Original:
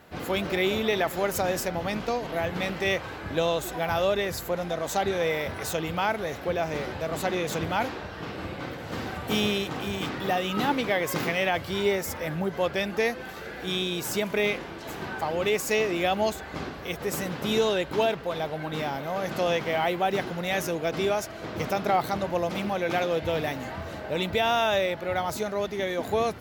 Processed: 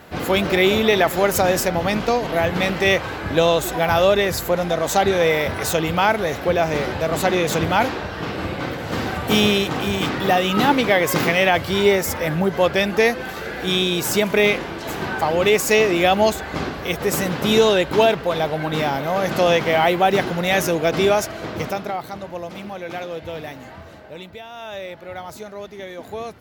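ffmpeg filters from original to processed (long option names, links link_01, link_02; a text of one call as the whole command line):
ffmpeg -i in.wav -af "volume=19dB,afade=type=out:start_time=21.24:duration=0.7:silence=0.237137,afade=type=out:start_time=23.78:duration=0.71:silence=0.266073,afade=type=in:start_time=24.49:duration=0.43:silence=0.316228" out.wav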